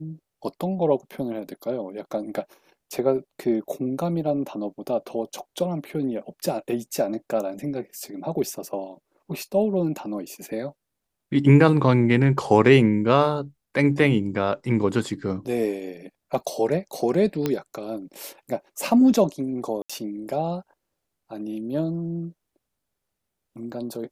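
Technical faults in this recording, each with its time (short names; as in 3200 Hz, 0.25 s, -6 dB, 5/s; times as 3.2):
17.46 pop -10 dBFS
19.82–19.89 gap 75 ms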